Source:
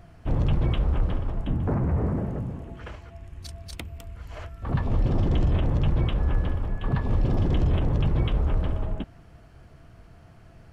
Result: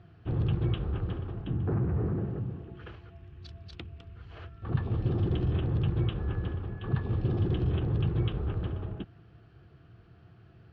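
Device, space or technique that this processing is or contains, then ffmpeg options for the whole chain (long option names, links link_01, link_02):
guitar cabinet: -af "highpass=80,equalizer=frequency=110:width_type=q:width=4:gain=5,equalizer=frequency=250:width_type=q:width=4:gain=-6,equalizer=frequency=360:width_type=q:width=4:gain=5,equalizer=frequency=600:width_type=q:width=4:gain=-10,equalizer=frequency=950:width_type=q:width=4:gain=-8,equalizer=frequency=2100:width_type=q:width=4:gain=-7,lowpass=frequency=4000:width=0.5412,lowpass=frequency=4000:width=1.3066,volume=-3.5dB"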